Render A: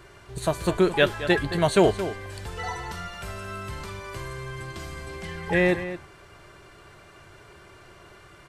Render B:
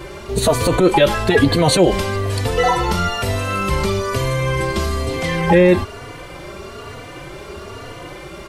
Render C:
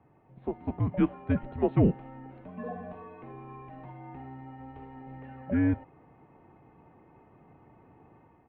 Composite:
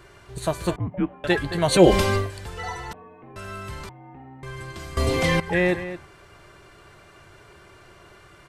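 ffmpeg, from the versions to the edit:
-filter_complex "[2:a]asplit=3[s0][s1][s2];[1:a]asplit=2[s3][s4];[0:a]asplit=6[s5][s6][s7][s8][s9][s10];[s5]atrim=end=0.762[s11];[s0]atrim=start=0.758:end=1.242[s12];[s6]atrim=start=1.238:end=1.83[s13];[s3]atrim=start=1.67:end=2.31[s14];[s7]atrim=start=2.15:end=2.932[s15];[s1]atrim=start=2.928:end=3.362[s16];[s8]atrim=start=3.358:end=3.892[s17];[s2]atrim=start=3.888:end=4.432[s18];[s9]atrim=start=4.428:end=4.972[s19];[s4]atrim=start=4.968:end=5.402[s20];[s10]atrim=start=5.398[s21];[s11][s12]acrossfade=d=0.004:c1=hsin:c2=hsin[s22];[s22][s13]acrossfade=d=0.004:c1=hsin:c2=hsin[s23];[s23][s14]acrossfade=d=0.16:c1=tri:c2=tri[s24];[s24][s15]acrossfade=d=0.16:c1=tri:c2=tri[s25];[s25][s16]acrossfade=d=0.004:c1=hsin:c2=hsin[s26];[s26][s17]acrossfade=d=0.004:c1=hsin:c2=hsin[s27];[s27][s18]acrossfade=d=0.004:c1=hsin:c2=hsin[s28];[s28][s19]acrossfade=d=0.004:c1=hsin:c2=hsin[s29];[s29][s20]acrossfade=d=0.004:c1=hsin:c2=hsin[s30];[s30][s21]acrossfade=d=0.004:c1=hsin:c2=hsin"

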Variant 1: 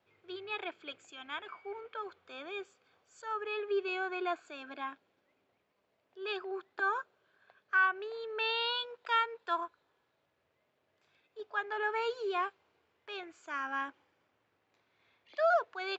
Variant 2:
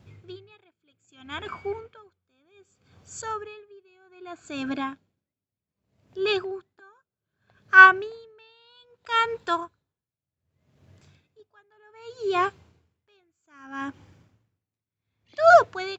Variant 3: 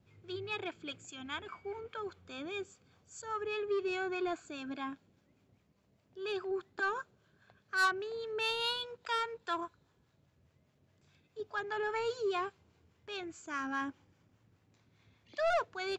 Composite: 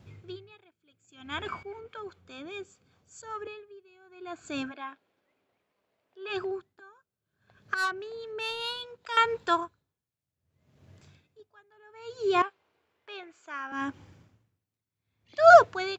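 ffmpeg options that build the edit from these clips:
-filter_complex "[2:a]asplit=2[s0][s1];[0:a]asplit=2[s2][s3];[1:a]asplit=5[s4][s5][s6][s7][s8];[s4]atrim=end=1.632[s9];[s0]atrim=start=1.628:end=3.472[s10];[s5]atrim=start=3.468:end=4.74[s11];[s2]atrim=start=4.58:end=6.43[s12];[s6]atrim=start=6.27:end=7.742[s13];[s1]atrim=start=7.738:end=9.172[s14];[s7]atrim=start=9.168:end=12.422[s15];[s3]atrim=start=12.418:end=13.722[s16];[s8]atrim=start=13.718[s17];[s9][s10]acrossfade=d=0.004:c1=hsin:c2=hsin[s18];[s18][s11]acrossfade=d=0.004:c1=hsin:c2=hsin[s19];[s19][s12]acrossfade=d=0.16:c1=tri:c2=tri[s20];[s20][s13]acrossfade=d=0.16:c1=tri:c2=tri[s21];[s21][s14]acrossfade=d=0.004:c1=hsin:c2=hsin[s22];[s22][s15]acrossfade=d=0.004:c1=hsin:c2=hsin[s23];[s23][s16]acrossfade=d=0.004:c1=hsin:c2=hsin[s24];[s24][s17]acrossfade=d=0.004:c1=hsin:c2=hsin"

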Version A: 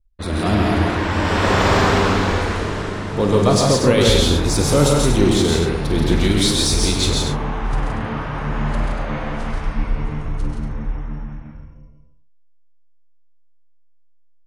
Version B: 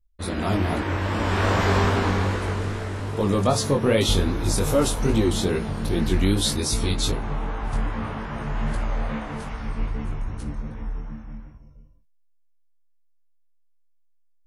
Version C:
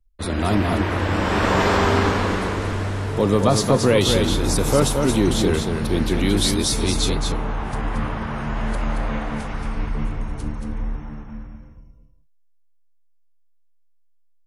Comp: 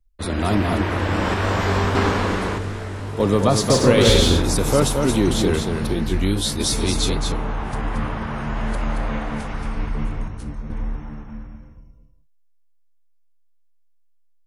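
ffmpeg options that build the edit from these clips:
-filter_complex "[1:a]asplit=4[s0][s1][s2][s3];[2:a]asplit=6[s4][s5][s6][s7][s8][s9];[s4]atrim=end=1.342[s10];[s0]atrim=start=1.338:end=1.952[s11];[s5]atrim=start=1.948:end=2.582[s12];[s1]atrim=start=2.578:end=3.202[s13];[s6]atrim=start=3.198:end=3.702[s14];[0:a]atrim=start=3.698:end=4.422[s15];[s7]atrim=start=4.418:end=5.932[s16];[s2]atrim=start=5.928:end=6.602[s17];[s8]atrim=start=6.598:end=10.282[s18];[s3]atrim=start=10.278:end=10.702[s19];[s9]atrim=start=10.698[s20];[s10][s11]acrossfade=d=0.004:c1=hsin:c2=hsin[s21];[s21][s12]acrossfade=d=0.004:c1=hsin:c2=hsin[s22];[s22][s13]acrossfade=d=0.004:c1=hsin:c2=hsin[s23];[s23][s14]acrossfade=d=0.004:c1=hsin:c2=hsin[s24];[s24][s15]acrossfade=d=0.004:c1=hsin:c2=hsin[s25];[s25][s16]acrossfade=d=0.004:c1=hsin:c2=hsin[s26];[s26][s17]acrossfade=d=0.004:c1=hsin:c2=hsin[s27];[s27][s18]acrossfade=d=0.004:c1=hsin:c2=hsin[s28];[s28][s19]acrossfade=d=0.004:c1=hsin:c2=hsin[s29];[s29][s20]acrossfade=d=0.004:c1=hsin:c2=hsin"

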